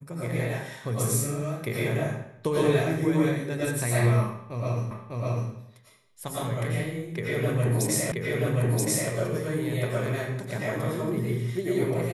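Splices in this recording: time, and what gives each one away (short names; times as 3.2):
4.91 repeat of the last 0.6 s
8.12 repeat of the last 0.98 s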